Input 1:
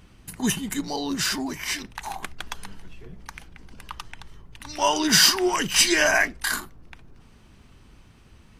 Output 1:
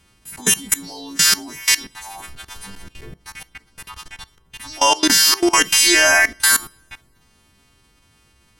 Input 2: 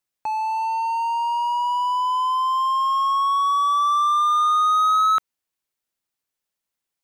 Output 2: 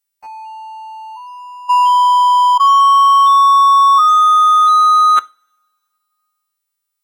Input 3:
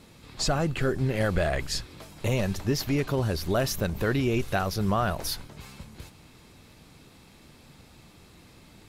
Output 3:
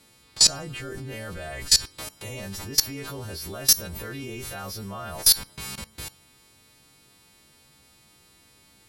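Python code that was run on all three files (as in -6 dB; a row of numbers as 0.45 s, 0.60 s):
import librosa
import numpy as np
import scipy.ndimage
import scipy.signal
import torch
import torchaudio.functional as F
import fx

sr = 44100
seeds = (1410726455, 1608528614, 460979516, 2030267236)

y = fx.freq_snap(x, sr, grid_st=2)
y = fx.level_steps(y, sr, step_db=22)
y = fx.rev_double_slope(y, sr, seeds[0], early_s=0.32, late_s=2.2, knee_db=-27, drr_db=18.5)
y = y * 10.0 ** (-2 / 20.0) / np.max(np.abs(y))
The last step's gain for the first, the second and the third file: +9.0 dB, +12.5 dB, +8.5 dB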